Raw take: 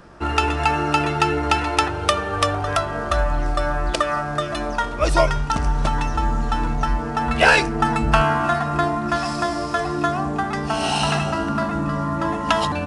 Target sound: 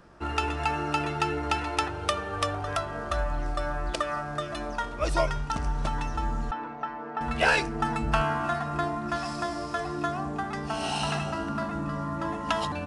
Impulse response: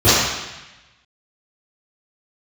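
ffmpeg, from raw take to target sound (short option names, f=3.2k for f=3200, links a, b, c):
-filter_complex "[0:a]asettb=1/sr,asplit=3[a][b][c];[a]atrim=end=6.514[d];[b]atrim=start=6.51:end=7.21,asetpts=PTS-STARTPTS,afade=t=in:d=0.004:c=qsin,afade=t=out:st=0.696:d=0.004:c=qsin,highpass=320,lowpass=2.2k[e];[c]atrim=start=7.206[f];[d][e]acrossfade=d=0.004:c1=hsin:c2=qsin[g];[g][f]acrossfade=d=0.004:c1=qsin:c2=hsin,volume=-8.5dB"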